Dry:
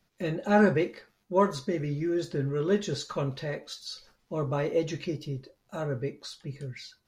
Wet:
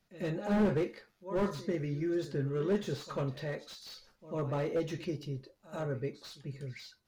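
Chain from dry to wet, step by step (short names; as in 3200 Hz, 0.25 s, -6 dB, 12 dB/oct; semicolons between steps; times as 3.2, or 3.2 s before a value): pre-echo 94 ms -16.5 dB; slew limiter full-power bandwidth 34 Hz; gain -4 dB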